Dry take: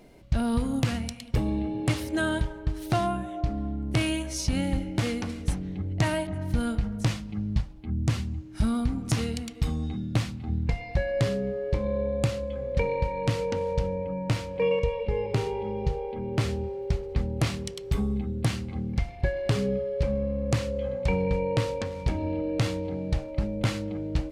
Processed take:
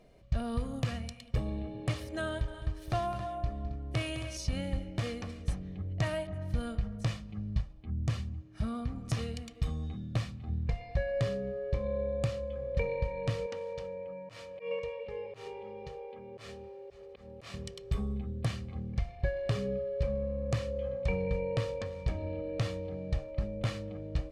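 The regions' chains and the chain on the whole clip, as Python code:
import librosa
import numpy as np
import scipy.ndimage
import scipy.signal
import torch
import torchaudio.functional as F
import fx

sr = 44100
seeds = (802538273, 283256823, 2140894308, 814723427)

y = fx.chain(x, sr, fx.peak_eq(hz=180.0, db=-12.5, octaves=0.21),
    fx.echo_multitap(ms=(209, 271), db=(-12.0, -12.0)), at=(2.27, 4.37))
y = fx.chain(y, sr, fx.highpass(hz=65.0, slope=12),
    fx.high_shelf(hz=4700.0, db=-5.5), at=(8.29, 8.96))
y = fx.chain(y, sr, fx.highpass(hz=550.0, slope=6),
    fx.auto_swell(attack_ms=123.0), at=(13.46, 17.54))
y = fx.high_shelf(y, sr, hz=8900.0, db=-9.5)
y = y + 0.45 * np.pad(y, (int(1.7 * sr / 1000.0), 0))[:len(y)]
y = F.gain(torch.from_numpy(y), -7.5).numpy()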